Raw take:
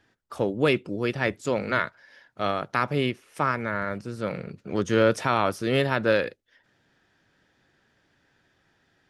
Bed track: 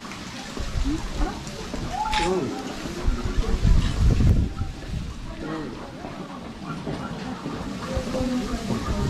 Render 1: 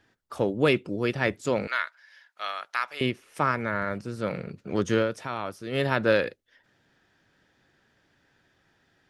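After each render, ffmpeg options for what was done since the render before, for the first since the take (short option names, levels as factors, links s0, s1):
-filter_complex "[0:a]asettb=1/sr,asplit=3[s0][s1][s2];[s0]atrim=end=1.674[s3];[s1]atrim=start=1.67:end=3.01,asetpts=PTS-STARTPTS,afade=t=in:d=0.004:c=qsin,afade=t=out:st=1.336:d=0.004:c=qsin,highpass=1300[s4];[s2]atrim=start=3.006[s5];[s3][s4]acrossfade=d=0.004:c1=hsin:c2=qsin[s6];[s6][s5]acrossfade=d=0.004:c1=qsin:c2=hsin,asplit=3[s7][s8][s9];[s7]atrim=end=5.08,asetpts=PTS-STARTPTS,afade=t=out:st=4.92:d=0.16:silence=0.334965[s10];[s8]atrim=start=5.08:end=5.71,asetpts=PTS-STARTPTS,volume=0.335[s11];[s9]atrim=start=5.71,asetpts=PTS-STARTPTS,afade=t=in:d=0.16:silence=0.334965[s12];[s10][s11][s12]concat=n=3:v=0:a=1"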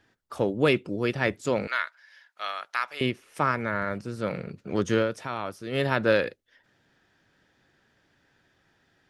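-af anull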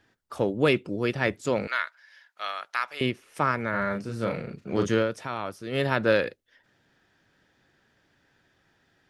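-filter_complex "[0:a]asettb=1/sr,asplit=3[s0][s1][s2];[s0]atrim=end=3.704[s3];[s1]atrim=start=3.7:end=4.88,asetpts=PTS-STARTPTS,afade=t=in:d=0.004:c=qsin,afade=t=out:st=1.176:d=0.004:c=qsin,asplit=2[s4][s5];[s5]adelay=35,volume=0.596[s6];[s4][s6]amix=inputs=2:normalize=0,atrim=end_sample=52038[s7];[s2]atrim=start=4.876[s8];[s3][s7]acrossfade=d=0.004:c1=hsin:c2=qsin[s9];[s9][s8]acrossfade=d=0.004:c1=qsin:c2=hsin"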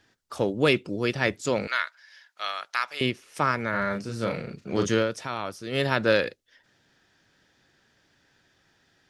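-af "equalizer=f=5600:w=0.74:g=7"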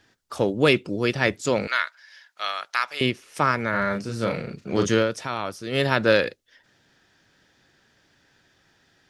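-af "volume=1.41"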